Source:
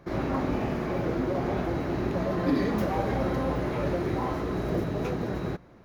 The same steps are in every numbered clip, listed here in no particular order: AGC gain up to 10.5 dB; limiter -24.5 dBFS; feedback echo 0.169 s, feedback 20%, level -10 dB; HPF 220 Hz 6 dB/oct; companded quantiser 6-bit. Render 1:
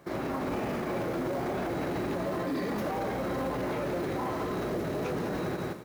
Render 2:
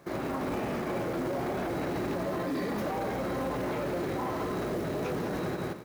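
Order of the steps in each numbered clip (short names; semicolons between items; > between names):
HPF > companded quantiser > AGC > feedback echo > limiter; AGC > feedback echo > companded quantiser > HPF > limiter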